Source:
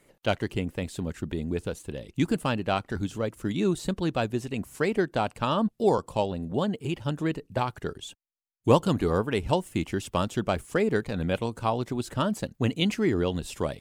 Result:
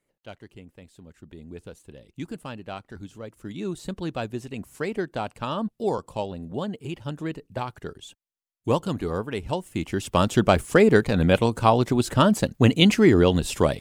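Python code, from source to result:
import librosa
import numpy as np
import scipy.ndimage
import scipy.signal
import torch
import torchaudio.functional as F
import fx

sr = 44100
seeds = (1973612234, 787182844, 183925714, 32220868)

y = fx.gain(x, sr, db=fx.line((1.04, -16.0), (1.63, -9.5), (3.2, -9.5), (4.0, -3.0), (9.6, -3.0), (10.35, 8.5)))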